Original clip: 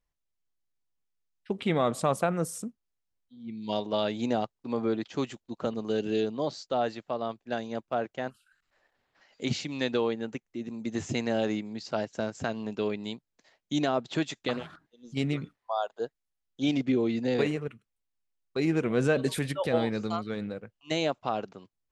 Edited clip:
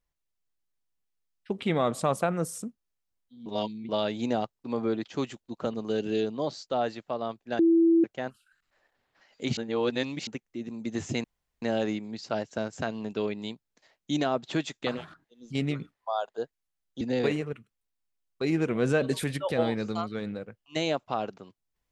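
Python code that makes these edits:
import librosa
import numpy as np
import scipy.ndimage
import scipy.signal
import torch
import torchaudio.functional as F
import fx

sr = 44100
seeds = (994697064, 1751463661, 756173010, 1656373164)

y = fx.edit(x, sr, fx.reverse_span(start_s=3.46, length_s=0.43),
    fx.bleep(start_s=7.59, length_s=0.45, hz=332.0, db=-17.0),
    fx.reverse_span(start_s=9.57, length_s=0.7),
    fx.insert_room_tone(at_s=11.24, length_s=0.38),
    fx.cut(start_s=16.63, length_s=0.53), tone=tone)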